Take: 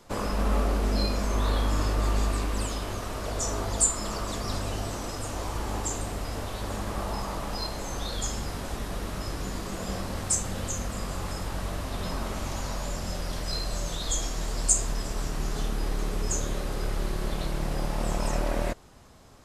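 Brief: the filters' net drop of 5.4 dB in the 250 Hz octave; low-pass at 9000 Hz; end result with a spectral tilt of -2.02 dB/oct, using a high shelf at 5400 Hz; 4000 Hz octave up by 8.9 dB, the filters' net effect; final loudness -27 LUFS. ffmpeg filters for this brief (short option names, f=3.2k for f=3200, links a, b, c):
-af "lowpass=9k,equalizer=f=250:t=o:g=-7.5,equalizer=f=4k:t=o:g=8.5,highshelf=f=5.4k:g=5.5,volume=1dB"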